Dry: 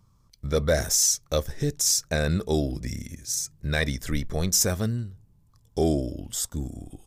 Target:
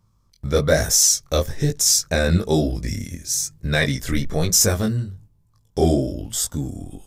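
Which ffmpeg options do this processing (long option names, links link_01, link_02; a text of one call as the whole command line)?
ffmpeg -i in.wav -af "agate=range=-7dB:threshold=-51dB:ratio=16:detection=peak,flanger=delay=18:depth=5.4:speed=1.1,volume=9dB" out.wav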